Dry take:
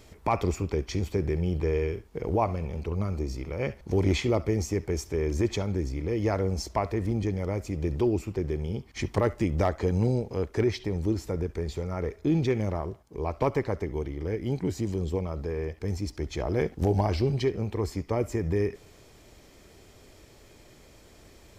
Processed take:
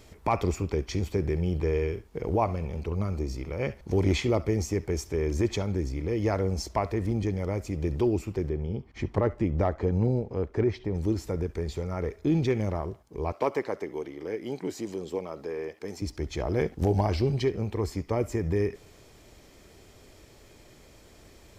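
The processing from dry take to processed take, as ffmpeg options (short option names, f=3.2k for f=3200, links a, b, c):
-filter_complex "[0:a]asettb=1/sr,asplit=3[a][b][c];[a]atrim=end=8.494[d];[b]atrim=start=8.49:end=10.95,asetpts=PTS-STARTPTS,afade=t=in:d=0.004:c=qsin,afade=t=out:st=2.456:d=0.004:c=qsin,lowpass=f=1.4k:p=1[e];[c]atrim=start=10.946[f];[d][e]acrossfade=d=0.004:c1=hsin:c2=qsin[g];[g][f]acrossfade=d=0.004:c1=qsin:c2=hsin,asettb=1/sr,asplit=3[h][i][j];[h]atrim=end=13.324[k];[i]atrim=start=13.32:end=16.02,asetpts=PTS-STARTPTS,afade=t=in:d=0.004:c=qsin,afade=t=out:st=2.696:d=0.004:c=qsin,highpass=290[l];[j]atrim=start=16.016[m];[k][l]acrossfade=d=0.004:c1=hsin:c2=qsin[n];[n][m]acrossfade=d=0.004:c1=qsin:c2=hsin"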